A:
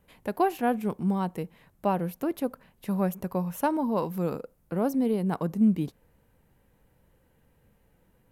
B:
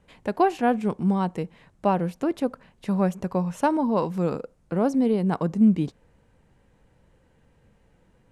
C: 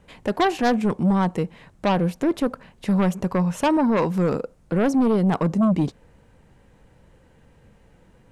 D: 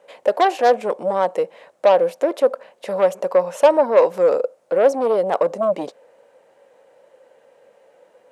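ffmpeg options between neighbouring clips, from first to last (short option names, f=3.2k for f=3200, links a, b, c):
-af "lowpass=f=8.5k:w=0.5412,lowpass=f=8.5k:w=1.3066,volume=4dB"
-af "aeval=exprs='0.335*(cos(1*acos(clip(val(0)/0.335,-1,1)))-cos(1*PI/2))+0.0531*(cos(3*acos(clip(val(0)/0.335,-1,1)))-cos(3*PI/2))+0.106*(cos(5*acos(clip(val(0)/0.335,-1,1)))-cos(5*PI/2))':c=same"
-af "highpass=f=550:t=q:w=4.9"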